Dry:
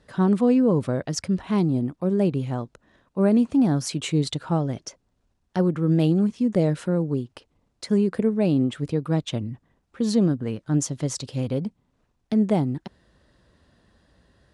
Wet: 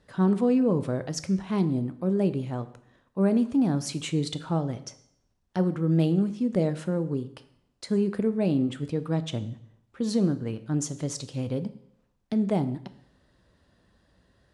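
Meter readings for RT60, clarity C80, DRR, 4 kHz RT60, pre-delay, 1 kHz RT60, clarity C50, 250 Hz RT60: 0.70 s, 17.0 dB, 11.0 dB, 0.65 s, 5 ms, 0.70 s, 15.0 dB, 0.75 s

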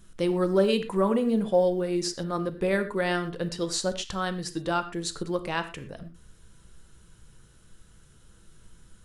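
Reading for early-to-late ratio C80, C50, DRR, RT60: 14.5 dB, 12.0 dB, 9.0 dB, not exponential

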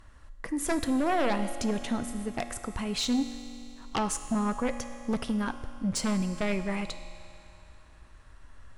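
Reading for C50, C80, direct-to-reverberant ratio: 9.5 dB, 10.5 dB, 8.5 dB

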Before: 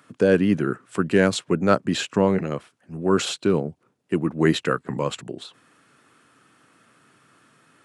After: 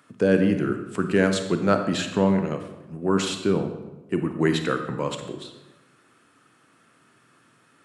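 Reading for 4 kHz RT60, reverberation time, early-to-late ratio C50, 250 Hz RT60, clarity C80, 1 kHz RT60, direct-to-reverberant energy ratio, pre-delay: 0.75 s, 1.1 s, 8.0 dB, 1.2 s, 10.0 dB, 1.0 s, 6.5 dB, 31 ms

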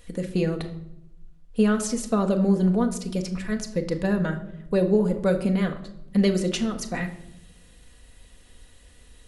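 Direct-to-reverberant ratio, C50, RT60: 4.0 dB, 12.0 dB, 0.85 s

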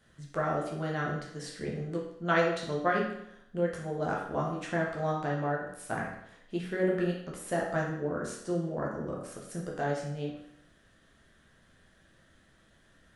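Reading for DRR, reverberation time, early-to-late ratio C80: -3.5 dB, 0.75 s, 6.5 dB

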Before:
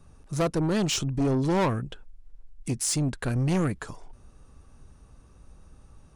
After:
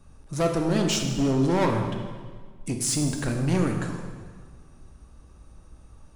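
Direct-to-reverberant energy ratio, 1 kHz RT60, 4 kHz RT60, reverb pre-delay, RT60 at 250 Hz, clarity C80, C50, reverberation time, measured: 2.5 dB, 1.6 s, 1.4 s, 3 ms, 1.7 s, 6.5 dB, 5.0 dB, 1.6 s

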